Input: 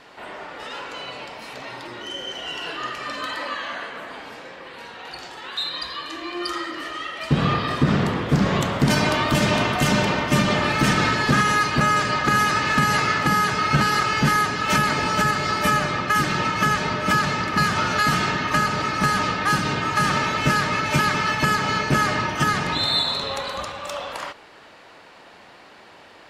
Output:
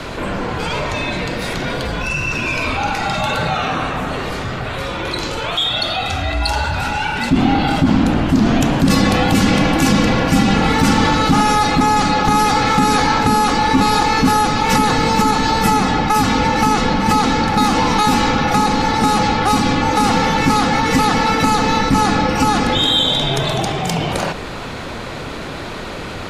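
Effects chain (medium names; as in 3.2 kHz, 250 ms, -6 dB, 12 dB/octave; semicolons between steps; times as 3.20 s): peaking EQ 2.2 kHz -3.5 dB 2 oct; frequency shift -410 Hz; level flattener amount 50%; trim +4 dB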